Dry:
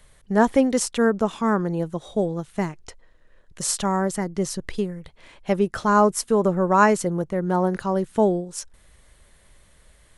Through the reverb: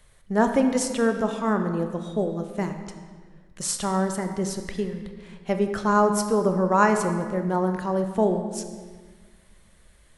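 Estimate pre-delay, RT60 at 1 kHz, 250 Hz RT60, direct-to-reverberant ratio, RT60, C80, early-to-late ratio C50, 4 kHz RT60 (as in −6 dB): 21 ms, 1.4 s, 2.0 s, 6.0 dB, 1.5 s, 8.5 dB, 7.5 dB, 1.2 s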